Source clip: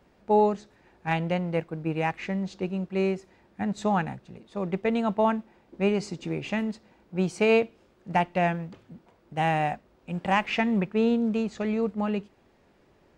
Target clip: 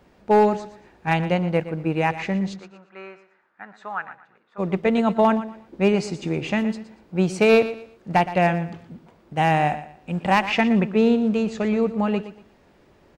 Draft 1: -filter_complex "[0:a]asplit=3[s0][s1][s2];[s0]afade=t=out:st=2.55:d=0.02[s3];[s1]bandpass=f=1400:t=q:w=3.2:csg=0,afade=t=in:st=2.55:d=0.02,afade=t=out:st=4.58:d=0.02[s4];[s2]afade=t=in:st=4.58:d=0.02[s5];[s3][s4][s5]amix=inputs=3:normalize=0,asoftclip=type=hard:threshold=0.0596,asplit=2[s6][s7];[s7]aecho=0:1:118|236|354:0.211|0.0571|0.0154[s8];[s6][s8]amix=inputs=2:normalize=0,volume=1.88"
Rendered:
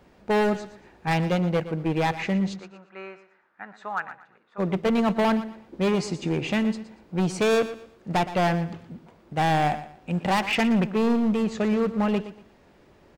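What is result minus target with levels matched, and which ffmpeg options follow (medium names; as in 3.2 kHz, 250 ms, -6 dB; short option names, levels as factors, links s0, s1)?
hard clipper: distortion +15 dB
-filter_complex "[0:a]asplit=3[s0][s1][s2];[s0]afade=t=out:st=2.55:d=0.02[s3];[s1]bandpass=f=1400:t=q:w=3.2:csg=0,afade=t=in:st=2.55:d=0.02,afade=t=out:st=4.58:d=0.02[s4];[s2]afade=t=in:st=4.58:d=0.02[s5];[s3][s4][s5]amix=inputs=3:normalize=0,asoftclip=type=hard:threshold=0.178,asplit=2[s6][s7];[s7]aecho=0:1:118|236|354:0.211|0.0571|0.0154[s8];[s6][s8]amix=inputs=2:normalize=0,volume=1.88"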